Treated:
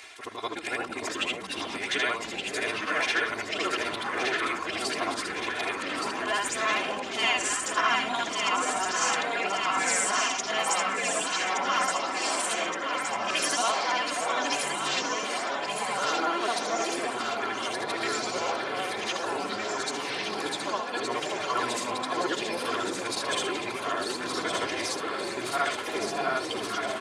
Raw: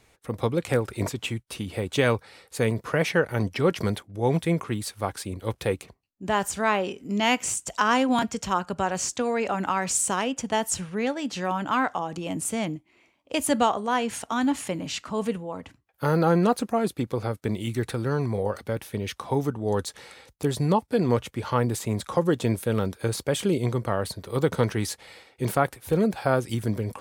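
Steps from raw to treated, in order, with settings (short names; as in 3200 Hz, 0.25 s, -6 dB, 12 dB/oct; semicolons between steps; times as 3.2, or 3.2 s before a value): short-time reversal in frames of 0.165 s; weighting filter ITU-R 468; harmonic-percussive split harmonic -4 dB; tone controls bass -3 dB, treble -13 dB; comb 2.9 ms, depth 91%; in parallel at 0 dB: limiter -20.5 dBFS, peak gain reduction 10.5 dB; on the sum: upward compressor, threshold -29 dBFS; on a send: echo with dull and thin repeats by turns 0.585 s, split 900 Hz, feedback 81%, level -3 dB; on the sum: echoes that change speed 0.208 s, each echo -5 st, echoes 2, each echo -6 dB; gain -5 dB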